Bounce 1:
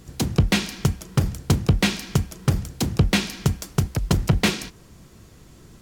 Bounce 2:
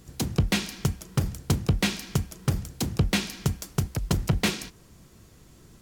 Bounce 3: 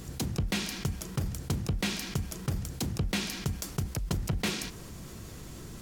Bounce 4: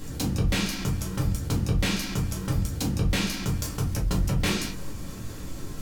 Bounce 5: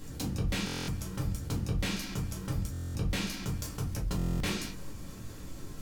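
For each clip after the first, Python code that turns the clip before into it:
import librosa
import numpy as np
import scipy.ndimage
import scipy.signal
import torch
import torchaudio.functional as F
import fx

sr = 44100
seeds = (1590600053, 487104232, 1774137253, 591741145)

y1 = fx.high_shelf(x, sr, hz=7000.0, db=4.0)
y1 = y1 * 10.0 ** (-5.0 / 20.0)
y2 = fx.env_flatten(y1, sr, amount_pct=50)
y2 = y2 * 10.0 ** (-8.5 / 20.0)
y3 = fx.room_shoebox(y2, sr, seeds[0], volume_m3=130.0, walls='furnished', distance_m=2.2)
y4 = fx.buffer_glitch(y3, sr, at_s=(0.65, 2.72, 4.17), block=1024, repeats=9)
y4 = y4 * 10.0 ** (-7.0 / 20.0)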